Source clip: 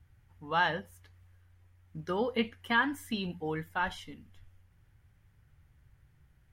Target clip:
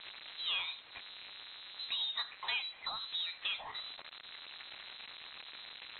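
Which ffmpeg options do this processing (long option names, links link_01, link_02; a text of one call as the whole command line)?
ffmpeg -i in.wav -filter_complex "[0:a]aeval=exprs='val(0)+0.5*0.00944*sgn(val(0))':channel_layout=same,highpass=370,equalizer=frequency=1400:width=0.42:gain=-4.5,acompressor=threshold=-47dB:ratio=3,asplit=2[link_01][link_02];[link_02]asetrate=66075,aresample=44100,atempo=0.66742,volume=-16dB[link_03];[link_01][link_03]amix=inputs=2:normalize=0,acrusher=bits=4:mode=log:mix=0:aa=0.000001,lowpass=frequency=3300:width_type=q:width=0.5098,lowpass=frequency=3300:width_type=q:width=0.6013,lowpass=frequency=3300:width_type=q:width=0.9,lowpass=frequency=3300:width_type=q:width=2.563,afreqshift=-3900,asetrate=48000,aresample=44100,volume=8.5dB" out.wav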